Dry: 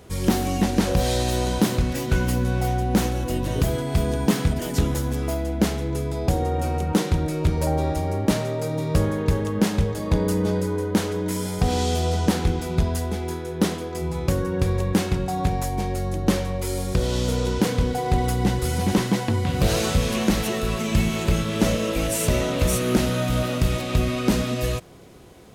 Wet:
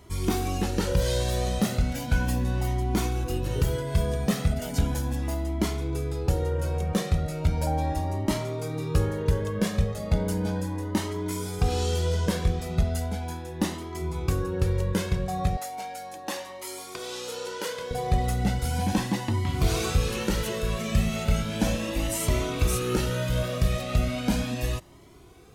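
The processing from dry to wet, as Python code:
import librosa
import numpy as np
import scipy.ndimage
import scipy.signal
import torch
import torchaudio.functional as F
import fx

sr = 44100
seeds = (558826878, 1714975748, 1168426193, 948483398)

y = fx.highpass(x, sr, hz=530.0, slope=12, at=(15.57, 17.91))
y = fx.comb_cascade(y, sr, direction='rising', hz=0.36)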